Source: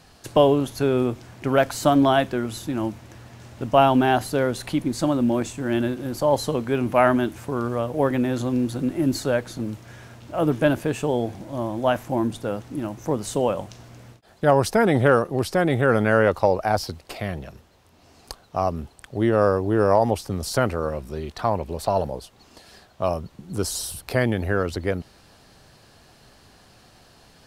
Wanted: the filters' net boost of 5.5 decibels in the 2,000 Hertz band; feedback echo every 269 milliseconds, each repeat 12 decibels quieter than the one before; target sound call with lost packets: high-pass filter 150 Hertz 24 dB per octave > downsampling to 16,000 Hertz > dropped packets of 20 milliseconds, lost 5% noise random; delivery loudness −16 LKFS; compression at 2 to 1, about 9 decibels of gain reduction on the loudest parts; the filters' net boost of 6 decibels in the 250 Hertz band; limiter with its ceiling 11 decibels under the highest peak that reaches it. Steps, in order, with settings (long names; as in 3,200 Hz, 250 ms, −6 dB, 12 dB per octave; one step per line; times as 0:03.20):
parametric band 250 Hz +7 dB
parametric band 2,000 Hz +7.5 dB
downward compressor 2 to 1, threshold −25 dBFS
brickwall limiter −18.5 dBFS
high-pass filter 150 Hz 24 dB per octave
repeating echo 269 ms, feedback 25%, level −12 dB
downsampling to 16,000 Hz
dropped packets of 20 ms, lost 5% noise random
level +14 dB